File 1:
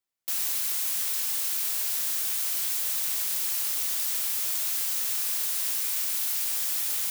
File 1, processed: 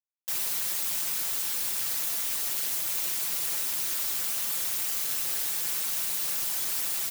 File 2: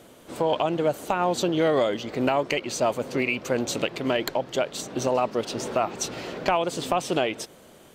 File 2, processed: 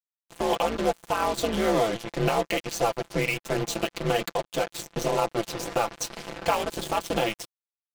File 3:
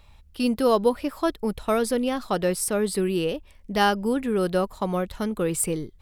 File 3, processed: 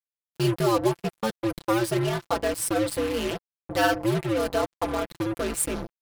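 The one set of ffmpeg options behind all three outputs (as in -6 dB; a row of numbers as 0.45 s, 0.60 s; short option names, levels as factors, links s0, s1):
-af "aeval=exprs='val(0)*sin(2*PI*110*n/s)':c=same,acrusher=bits=4:mix=0:aa=0.5,aecho=1:1:5.9:0.61"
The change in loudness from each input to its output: -1.5 LU, -1.5 LU, -1.5 LU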